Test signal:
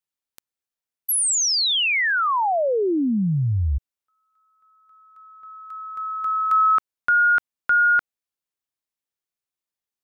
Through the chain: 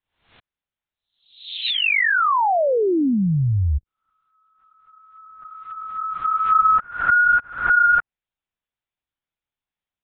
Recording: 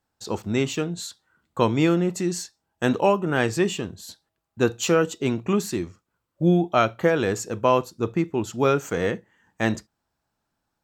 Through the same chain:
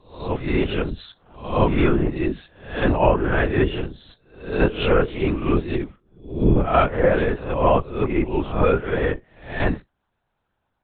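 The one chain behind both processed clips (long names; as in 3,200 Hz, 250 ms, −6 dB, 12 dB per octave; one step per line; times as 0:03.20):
peak hold with a rise ahead of every peak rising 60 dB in 0.52 s
linear-prediction vocoder at 8 kHz whisper
treble cut that deepens with the level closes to 2,500 Hz, closed at −18.5 dBFS
level +2 dB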